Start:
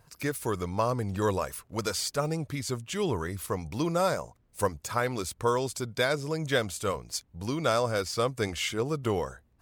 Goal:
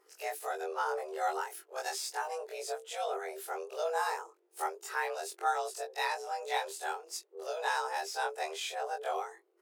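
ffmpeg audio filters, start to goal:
-af "afftfilt=real='re':imag='-im':win_size=2048:overlap=0.75,afreqshift=310,volume=-2dB"

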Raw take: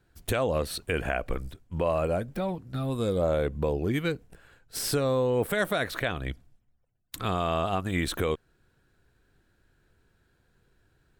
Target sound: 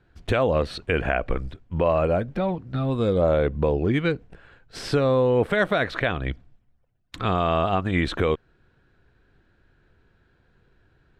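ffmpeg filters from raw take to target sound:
-af "lowpass=3.5k,volume=5.5dB"

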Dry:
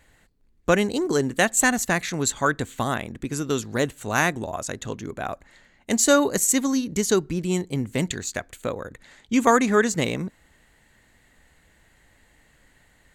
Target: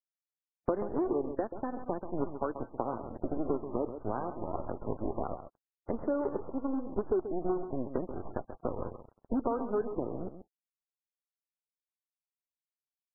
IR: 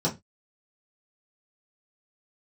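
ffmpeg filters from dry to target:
-filter_complex "[0:a]highpass=f=240:w=0.5412,highpass=f=240:w=1.3066,adynamicequalizer=threshold=0.0126:dfrequency=350:dqfactor=3.7:tfrequency=350:tqfactor=3.7:attack=5:release=100:ratio=0.375:range=3.5:mode=boostabove:tftype=bell,acrusher=bits=4:dc=4:mix=0:aa=0.000001,asettb=1/sr,asplit=3[a][b][c];[a]atrim=end=7.944[d];[b]atrim=start=7.94:end=8.4,asetpts=PTS-STARTPTS,afade=t=in:d=0.004:c=qsin,afade=t=out:st=0.456:d=0.004:c=qsin,agate=range=-19dB:threshold=-40dB:ratio=16:detection=peak[e];[c]atrim=start=8.396[f];[d][e]acrossfade=d=0.004:c1=hsin:c2=qsin[g];[g][f]acrossfade=d=0.004:c1=qsin:c2=hsin,acompressor=threshold=-32dB:ratio=12,lowpass=f=1k:w=0.5412,lowpass=f=1k:w=1.3066,asplit=2[h][i];[i]adelay=134.1,volume=-10dB,highshelf=f=4k:g=-3.02[j];[h][j]amix=inputs=2:normalize=0,volume=6dB" -ar 11025 -c:a libmp3lame -b:a 8k

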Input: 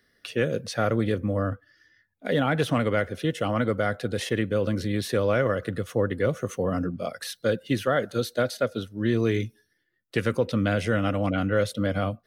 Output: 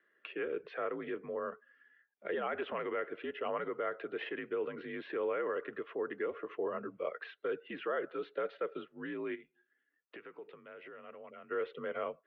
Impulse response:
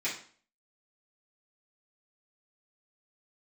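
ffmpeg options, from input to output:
-filter_complex "[0:a]alimiter=limit=-19.5dB:level=0:latency=1:release=43,asplit=3[a][b][c];[a]afade=t=out:st=9.34:d=0.02[d];[b]acompressor=threshold=-38dB:ratio=10,afade=t=in:st=9.34:d=0.02,afade=t=out:st=11.5:d=0.02[e];[c]afade=t=in:st=11.5:d=0.02[f];[d][e][f]amix=inputs=3:normalize=0,highpass=f=400:t=q:w=0.5412,highpass=f=400:t=q:w=1.307,lowpass=f=2.8k:t=q:w=0.5176,lowpass=f=2.8k:t=q:w=0.7071,lowpass=f=2.8k:t=q:w=1.932,afreqshift=-62,volume=-4.5dB"

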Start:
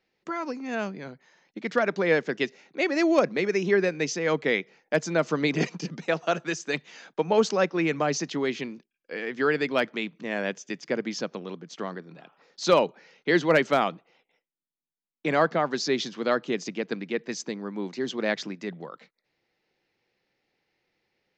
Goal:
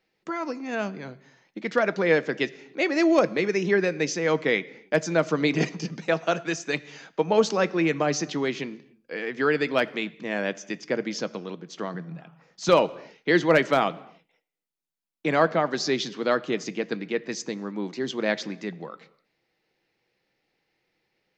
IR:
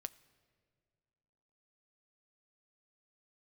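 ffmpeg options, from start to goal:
-filter_complex "[0:a]asettb=1/sr,asplit=3[a][b][c];[a]atrim=end=11.944[d];[b]atrim=start=11.94:end=12.69,asetpts=PTS-STARTPTS,afade=t=in:d=0.004:c=qsin,afade=t=out:st=0.746:d=0.004:c=qsin,equalizer=f=160:t=o:w=0.67:g=10,equalizer=f=400:t=o:w=0.67:g=-4,equalizer=f=4k:t=o:w=0.67:g=-8[e];[c]atrim=start=12.686[f];[d][e]acrossfade=d=0.004:c1=hsin:c2=qsin[g];[g][f]acrossfade=d=0.004:c1=qsin:c2=hsin[h];[1:a]atrim=start_sample=2205,afade=t=out:st=0.35:d=0.01,atrim=end_sample=15876[i];[h][i]afir=irnorm=-1:irlink=0,volume=5dB"

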